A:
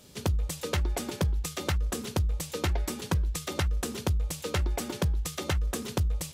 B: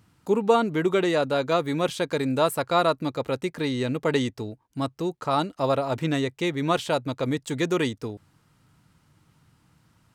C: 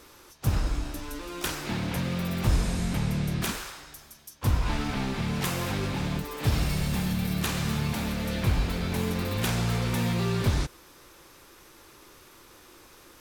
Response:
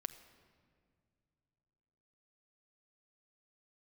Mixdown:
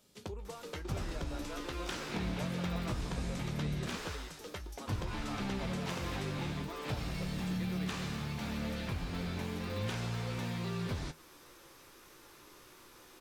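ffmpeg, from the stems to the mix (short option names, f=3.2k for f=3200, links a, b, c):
-filter_complex "[0:a]equalizer=f=90:w=1.5:g=-8.5,volume=-8.5dB[a];[1:a]highpass=370,acompressor=threshold=-27dB:ratio=6,volume=-13dB[b];[2:a]equalizer=f=62:w=1.5:g=-5,acompressor=threshold=-31dB:ratio=3,adelay=450,volume=0dB[c];[a][b][c]amix=inputs=3:normalize=0,acrossover=split=6800[d][e];[e]acompressor=threshold=-55dB:ratio=4:attack=1:release=60[f];[d][f]amix=inputs=2:normalize=0,flanger=delay=9.5:depth=7.1:regen=58:speed=0.2:shape=sinusoidal"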